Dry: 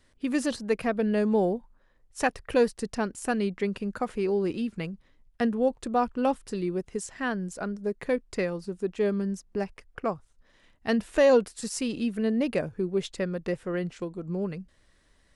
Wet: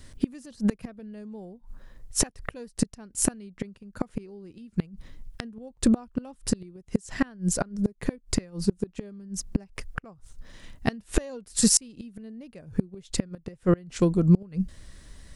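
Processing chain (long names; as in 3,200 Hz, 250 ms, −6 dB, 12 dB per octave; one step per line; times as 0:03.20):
gate with flip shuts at −23 dBFS, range −30 dB
bass and treble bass +10 dB, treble +7 dB
level +9 dB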